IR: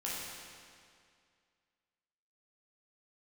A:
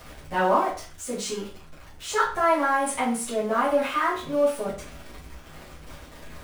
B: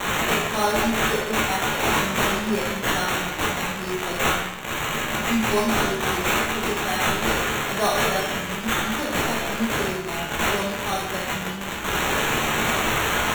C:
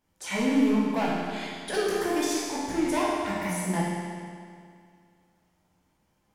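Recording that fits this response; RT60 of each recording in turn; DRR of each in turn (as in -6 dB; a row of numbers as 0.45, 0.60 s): C; 0.40, 0.90, 2.2 s; -9.5, -4.5, -7.0 dB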